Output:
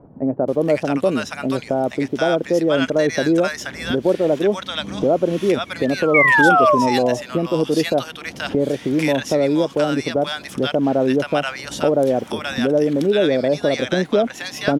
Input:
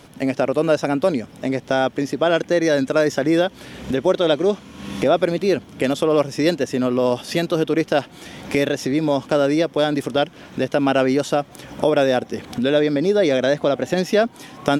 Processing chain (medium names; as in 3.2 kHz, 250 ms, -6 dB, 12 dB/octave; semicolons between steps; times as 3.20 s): painted sound fall, 5.66–6.75 s, 570–2300 Hz -15 dBFS; bands offset in time lows, highs 480 ms, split 940 Hz; trim +1 dB